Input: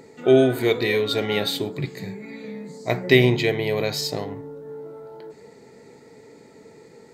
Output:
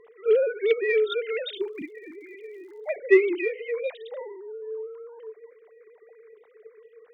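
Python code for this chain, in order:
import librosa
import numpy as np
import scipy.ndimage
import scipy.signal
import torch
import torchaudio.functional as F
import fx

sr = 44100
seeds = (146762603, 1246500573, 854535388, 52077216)

p1 = fx.sine_speech(x, sr)
p2 = 10.0 ** (-15.0 / 20.0) * np.tanh(p1 / 10.0 ** (-15.0 / 20.0))
p3 = p1 + (p2 * librosa.db_to_amplitude(-9.5))
p4 = fx.dmg_crackle(p3, sr, seeds[0], per_s=120.0, level_db=-46.0, at=(1.55, 2.94), fade=0.02)
p5 = fx.ensemble(p4, sr, at=(3.44, 3.86), fade=0.02)
y = p5 * librosa.db_to_amplitude(-5.5)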